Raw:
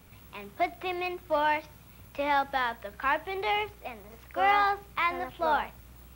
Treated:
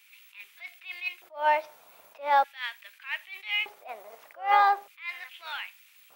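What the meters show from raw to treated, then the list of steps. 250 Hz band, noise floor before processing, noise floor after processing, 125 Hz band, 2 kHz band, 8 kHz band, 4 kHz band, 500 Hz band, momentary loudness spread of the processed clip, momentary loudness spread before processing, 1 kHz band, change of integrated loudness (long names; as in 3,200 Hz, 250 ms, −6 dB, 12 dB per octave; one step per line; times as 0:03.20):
below −15 dB, −53 dBFS, −59 dBFS, below −30 dB, −1.0 dB, can't be measured, +2.0 dB, −4.5 dB, 20 LU, 18 LU, +1.0 dB, +0.5 dB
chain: auto-filter high-pass square 0.41 Hz 630–2,400 Hz
level that may rise only so fast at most 190 dB per second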